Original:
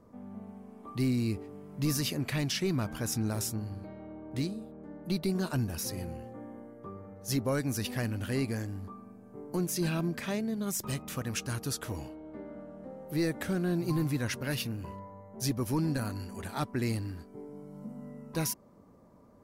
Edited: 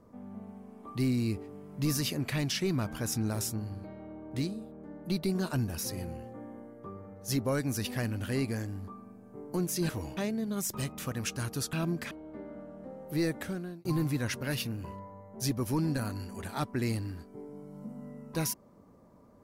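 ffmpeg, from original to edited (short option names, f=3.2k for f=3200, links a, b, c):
-filter_complex "[0:a]asplit=6[a][b][c][d][e][f];[a]atrim=end=9.892[g];[b]atrim=start=11.828:end=12.112[h];[c]atrim=start=10.268:end=11.832[i];[d]atrim=start=9.888:end=10.272[j];[e]atrim=start=12.108:end=13.85,asetpts=PTS-STARTPTS,afade=t=out:st=1.182:d=0.56[k];[f]atrim=start=13.85,asetpts=PTS-STARTPTS,afade=t=in:d=0.004:c=hsin[l];[g][h]acrossfade=d=0.004:c1=hsin:c2=hsin[m];[m][i]acrossfade=d=0.004:c1=hsin:c2=hsin[n];[n][j]acrossfade=d=0.004:c1=hsin:c2=hsin[o];[k][l]concat=n=2:v=0:a=1[p];[o][p]acrossfade=d=0.004:c1=hsin:c2=hsin"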